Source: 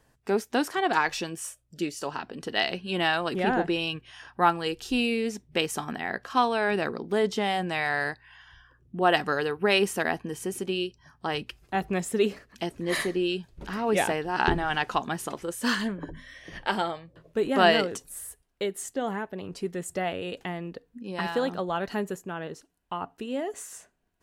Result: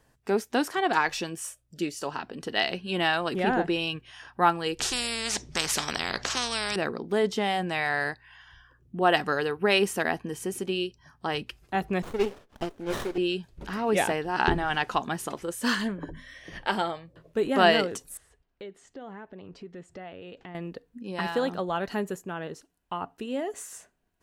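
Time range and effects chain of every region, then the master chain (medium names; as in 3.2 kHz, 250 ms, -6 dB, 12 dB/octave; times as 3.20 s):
4.79–6.76 s: resonant low-pass 6.1 kHz, resonance Q 2.6 + spectrum-flattening compressor 4:1
12.02–13.18 s: high-pass 330 Hz + sliding maximum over 17 samples
18.17–20.55 s: compression 2.5:1, threshold -43 dBFS + distance through air 150 m
whole clip: none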